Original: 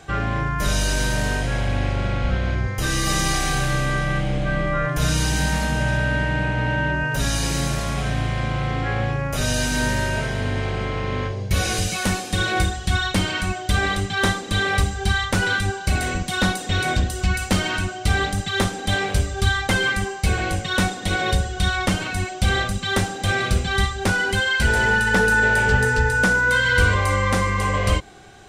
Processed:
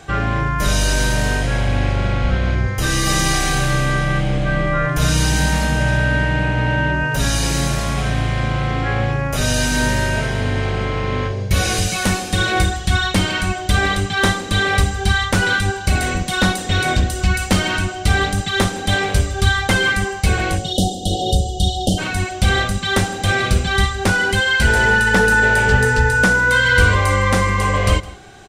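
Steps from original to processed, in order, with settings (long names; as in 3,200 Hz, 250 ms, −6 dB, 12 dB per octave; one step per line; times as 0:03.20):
time-frequency box erased 0:20.58–0:21.98, 800–2,800 Hz
single-tap delay 161 ms −19.5 dB
level +4 dB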